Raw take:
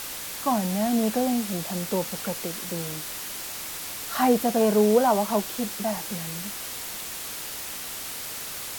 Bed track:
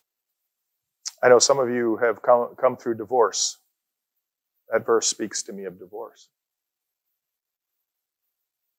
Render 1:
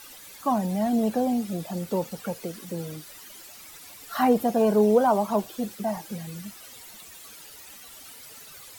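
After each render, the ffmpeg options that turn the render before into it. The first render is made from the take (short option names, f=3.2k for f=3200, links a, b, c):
-af "afftdn=nr=14:nf=-35"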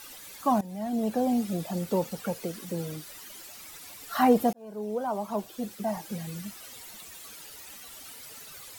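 -filter_complex "[0:a]asplit=3[a][b][c];[a]atrim=end=0.61,asetpts=PTS-STARTPTS,afade=t=out:st=0.606:d=0.004:c=hsin:silence=0.149624[d];[b]atrim=start=0.61:end=4.53,asetpts=PTS-STARTPTS,afade=t=in:d=0.78:silence=0.149624,afade=t=out:st=3.916:d=0.004:c=hsin[e];[c]atrim=start=4.53,asetpts=PTS-STARTPTS,afade=t=in:d=1.72[f];[d][e][f]concat=n=3:v=0:a=1"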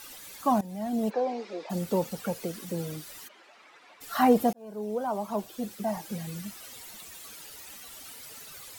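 -filter_complex "[0:a]asplit=3[a][b][c];[a]afade=t=out:st=1.09:d=0.02[d];[b]highpass=f=360:w=0.5412,highpass=f=360:w=1.3066,equalizer=f=440:t=q:w=4:g=6,equalizer=f=670:t=q:w=4:g=-4,equalizer=f=970:t=q:w=4:g=6,equalizer=f=2.2k:t=q:w=4:g=4,equalizer=f=3.2k:t=q:w=4:g=-6,lowpass=f=4.9k:w=0.5412,lowpass=f=4.9k:w=1.3066,afade=t=in:st=1.09:d=0.02,afade=t=out:st=1.69:d=0.02[e];[c]afade=t=in:st=1.69:d=0.02[f];[d][e][f]amix=inputs=3:normalize=0,asplit=3[g][h][i];[g]afade=t=out:st=3.27:d=0.02[j];[h]highpass=410,lowpass=2.2k,afade=t=in:st=3.27:d=0.02,afade=t=out:st=4:d=0.02[k];[i]afade=t=in:st=4:d=0.02[l];[j][k][l]amix=inputs=3:normalize=0"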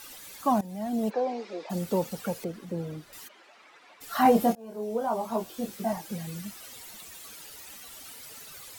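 -filter_complex "[0:a]asettb=1/sr,asplit=3[a][b][c];[a]atrim=end=2.444[d];[b]atrim=start=2.44:end=3.13,asetpts=PTS-STARTPTS,afade=t=in:d=0.004:c=qsin,afade=t=out:st=0.686:d=0.004:c=qsin,lowpass=f=1.5k:p=1[e];[c]atrim=start=3.126[f];[d][e]acrossfade=d=0.004:c1=hsin:c2=qsin[g];[g][f]acrossfade=d=0.004:c1=qsin:c2=hsin,asettb=1/sr,asplit=3[h][i][j];[h]atrim=end=4.234[k];[i]atrim=start=4.23:end=5.93,asetpts=PTS-STARTPTS,afade=t=in:d=0.004:c=qsin,afade=t=out:st=1.696:d=0.004:c=qsin,asplit=2[l][m];[m]adelay=22,volume=-2.5dB[n];[l][n]amix=inputs=2:normalize=0,atrim=end_sample=74970[o];[j]atrim=start=5.926[p];[k][o]acrossfade=d=0.004:c1=hsin:c2=qsin[q];[q][p]acrossfade=d=0.004:c1=qsin:c2=hsin"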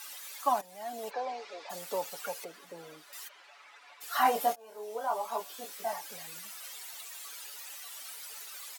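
-af "highpass=740,aecho=1:1:7:0.42"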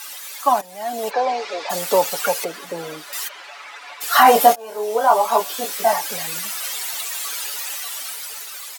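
-af "dynaudnorm=f=240:g=9:m=7dB,alimiter=level_in=10.5dB:limit=-1dB:release=50:level=0:latency=1"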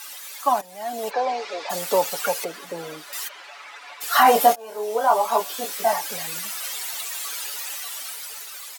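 -af "volume=-3.5dB"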